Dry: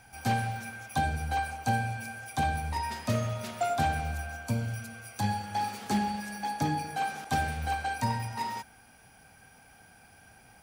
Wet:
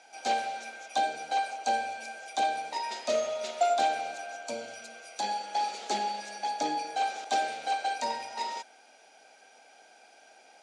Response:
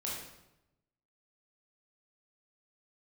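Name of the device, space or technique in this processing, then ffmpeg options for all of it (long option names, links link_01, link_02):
phone speaker on a table: -af "highpass=frequency=350:width=0.5412,highpass=frequency=350:width=1.3066,equalizer=frequency=620:width_type=q:width=4:gain=6,equalizer=frequency=1100:width_type=q:width=4:gain=-8,equalizer=frequency=1700:width_type=q:width=4:gain=-6,equalizer=frequency=3900:width_type=q:width=4:gain=5,equalizer=frequency=6900:width_type=q:width=4:gain=5,lowpass=frequency=7600:width=0.5412,lowpass=frequency=7600:width=1.3066,volume=2dB"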